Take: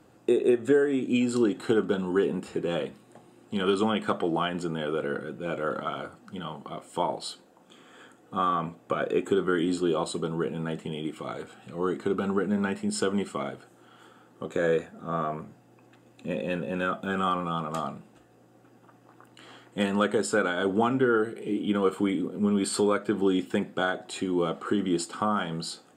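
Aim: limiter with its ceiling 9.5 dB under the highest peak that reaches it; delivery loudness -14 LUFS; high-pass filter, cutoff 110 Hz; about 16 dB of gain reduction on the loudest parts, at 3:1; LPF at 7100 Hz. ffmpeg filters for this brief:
-af "highpass=110,lowpass=7.1k,acompressor=threshold=-41dB:ratio=3,volume=29dB,alimiter=limit=-3dB:level=0:latency=1"

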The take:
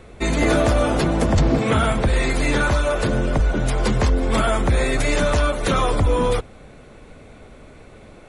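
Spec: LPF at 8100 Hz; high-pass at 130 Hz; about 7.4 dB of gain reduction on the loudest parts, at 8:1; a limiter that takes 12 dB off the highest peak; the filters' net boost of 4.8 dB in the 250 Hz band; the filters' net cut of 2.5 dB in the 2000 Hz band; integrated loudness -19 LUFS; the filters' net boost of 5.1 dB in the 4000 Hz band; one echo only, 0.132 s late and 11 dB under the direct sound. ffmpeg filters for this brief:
-af "highpass=130,lowpass=8.1k,equalizer=f=250:t=o:g=6.5,equalizer=f=2k:t=o:g=-5.5,equalizer=f=4k:t=o:g=8,acompressor=threshold=-18dB:ratio=8,alimiter=limit=-21dB:level=0:latency=1,aecho=1:1:132:0.282,volume=10dB"

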